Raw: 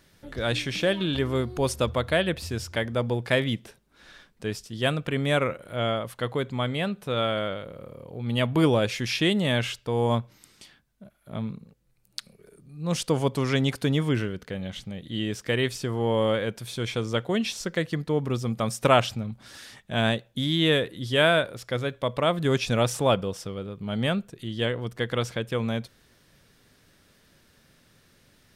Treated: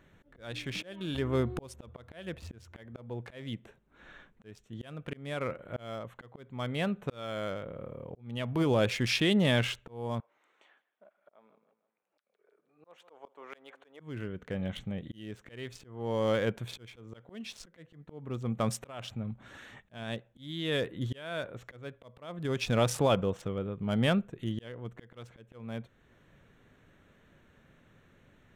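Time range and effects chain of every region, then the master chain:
10.20–14.00 s: Bessel high-pass 860 Hz, order 4 + tilt EQ -4.5 dB/octave + feedback delay 158 ms, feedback 31%, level -19 dB
whole clip: local Wiener filter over 9 samples; peak limiter -16.5 dBFS; slow attack 672 ms

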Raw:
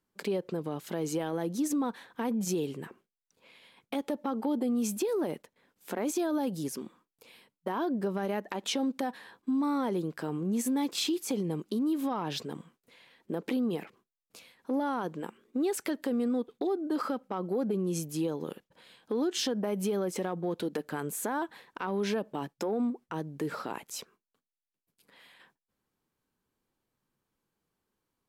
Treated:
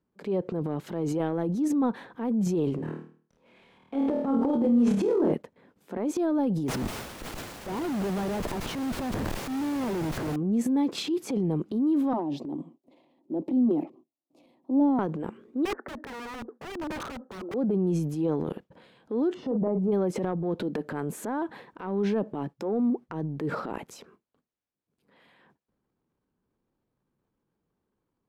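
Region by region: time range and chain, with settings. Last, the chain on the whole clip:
2.75–5.33 s: CVSD coder 64 kbps + treble shelf 5.3 kHz -8.5 dB + flutter echo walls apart 4.4 m, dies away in 0.45 s
6.68–10.36 s: Schmitt trigger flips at -45 dBFS + word length cut 6-bit, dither triangular
12.13–14.99 s: high-pass 230 Hz 24 dB/octave + tilt shelf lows +9.5 dB, about 660 Hz + static phaser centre 300 Hz, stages 8
15.65–17.54 s: Chebyshev band-pass 230–1800 Hz, order 5 + integer overflow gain 31.5 dB
19.34–19.92 s: Savitzky-Golay filter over 65 samples + doubling 42 ms -9 dB
whole clip: high-pass 280 Hz 6 dB/octave; tilt EQ -4.5 dB/octave; transient shaper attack -6 dB, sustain +8 dB

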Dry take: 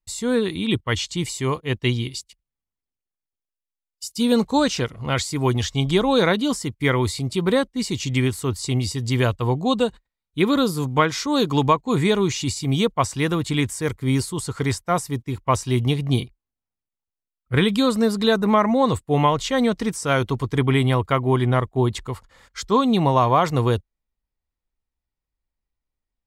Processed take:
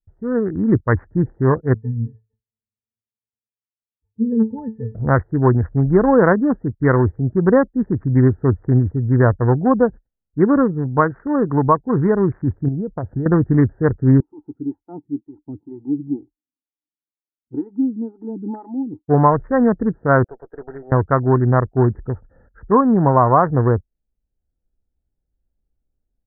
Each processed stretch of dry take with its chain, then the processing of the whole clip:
1.74–4.95 s: dynamic bell 850 Hz, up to -5 dB, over -36 dBFS, Q 1.1 + pitch-class resonator A, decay 0.2 s
12.68–13.26 s: dynamic bell 1.4 kHz, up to -6 dB, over -32 dBFS, Q 0.85 + compression 16:1, threshold -25 dBFS
14.20–19.08 s: vowel filter u + distance through air 250 m + lamp-driven phase shifter 2.1 Hz
20.24–20.92 s: high-pass 540 Hz 24 dB/octave + distance through air 200 m + valve stage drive 23 dB, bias 0.6
whole clip: local Wiener filter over 41 samples; steep low-pass 1.8 kHz 96 dB/octave; level rider; trim -1 dB

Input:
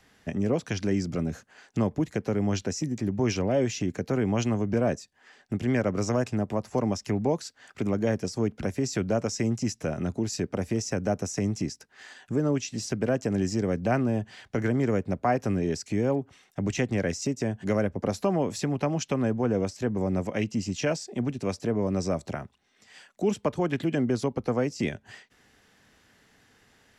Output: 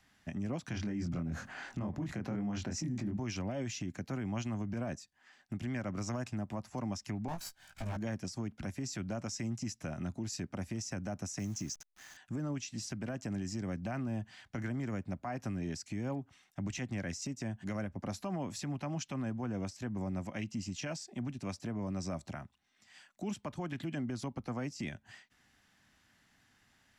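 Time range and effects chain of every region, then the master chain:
0.68–3.17 s: treble shelf 3.1 kHz -12 dB + doubling 24 ms -3 dB + level flattener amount 50%
7.28–7.97 s: comb filter that takes the minimum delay 1.3 ms + treble shelf 7 kHz +6 dB + doubling 18 ms -4 dB
11.39–12.17 s: send-on-delta sampling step -46.5 dBFS + peaking EQ 6.3 kHz +13 dB 0.32 oct
whole clip: peaking EQ 450 Hz -13 dB 0.56 oct; peak limiter -22.5 dBFS; trim -7 dB

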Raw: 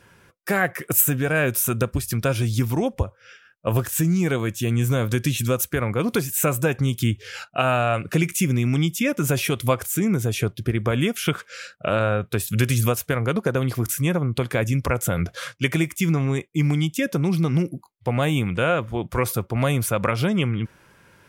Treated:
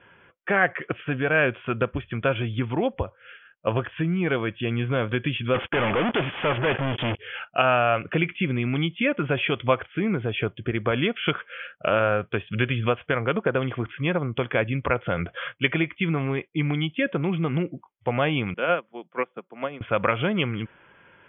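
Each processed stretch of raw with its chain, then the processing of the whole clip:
5.54–7.19 s: high-pass 140 Hz 6 dB/octave + waveshaping leveller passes 5 + hard clipper -20 dBFS
18.54–19.81 s: de-esser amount 70% + steep high-pass 160 Hz 48 dB/octave + upward expansion 2.5:1, over -31 dBFS
whole clip: Chebyshev low-pass 3.4 kHz, order 10; bass shelf 240 Hz -9.5 dB; trim +2 dB

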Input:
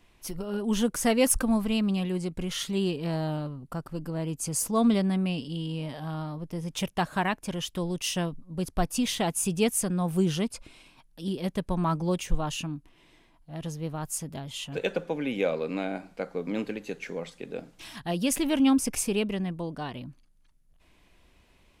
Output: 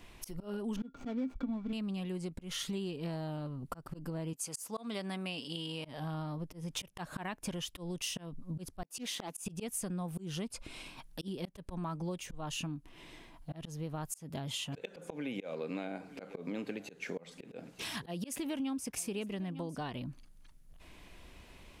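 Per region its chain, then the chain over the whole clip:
0.76–1.73 s: median filter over 25 samples + boxcar filter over 4 samples + small resonant body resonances 260/1400/2300/3400 Hz, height 15 dB, ringing for 100 ms
4.33–5.85 s: high-pass 240 Hz 6 dB/octave + bass shelf 430 Hz -10 dB
8.83–9.46 s: high-pass 190 Hz 24 dB/octave + slow attack 355 ms + loudspeaker Doppler distortion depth 0.74 ms
14.11–19.80 s: high-pass 62 Hz + delay 903 ms -23 dB
whole clip: slow attack 358 ms; compression 6:1, threshold -43 dBFS; trim +6.5 dB

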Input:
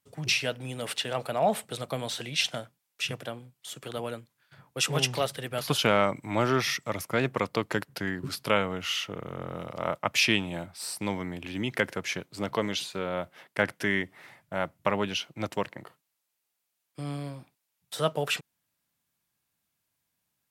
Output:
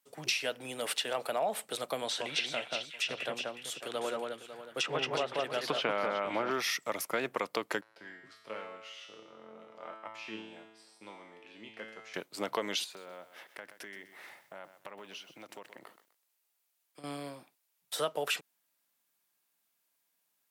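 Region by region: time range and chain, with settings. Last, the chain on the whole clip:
2.02–6.51 s: low-pass that closes with the level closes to 2.7 kHz, closed at -23.5 dBFS + echo whose repeats swap between lows and highs 183 ms, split 2.3 kHz, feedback 57%, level -2 dB
7.81–12.14 s: de-esser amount 90% + low-pass 6.7 kHz + feedback comb 110 Hz, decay 0.99 s, mix 90%
12.84–17.04 s: compression 5:1, threshold -44 dBFS + bit-crushed delay 126 ms, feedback 35%, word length 10-bit, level -11.5 dB
whole clip: high-pass 330 Hz 12 dB/octave; treble shelf 12 kHz +5 dB; compression 6:1, threshold -28 dBFS

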